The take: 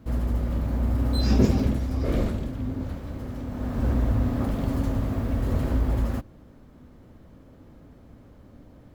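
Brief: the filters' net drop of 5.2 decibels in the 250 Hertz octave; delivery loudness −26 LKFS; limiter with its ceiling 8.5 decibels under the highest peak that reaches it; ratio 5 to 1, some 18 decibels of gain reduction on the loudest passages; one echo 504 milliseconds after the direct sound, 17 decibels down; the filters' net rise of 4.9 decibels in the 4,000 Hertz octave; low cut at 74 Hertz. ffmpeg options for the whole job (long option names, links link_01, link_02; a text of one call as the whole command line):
ffmpeg -i in.wav -af "highpass=74,equalizer=frequency=250:width_type=o:gain=-6,equalizer=frequency=4000:width_type=o:gain=5.5,acompressor=threshold=-39dB:ratio=5,alimiter=level_in=12.5dB:limit=-24dB:level=0:latency=1,volume=-12.5dB,aecho=1:1:504:0.141,volume=21dB" out.wav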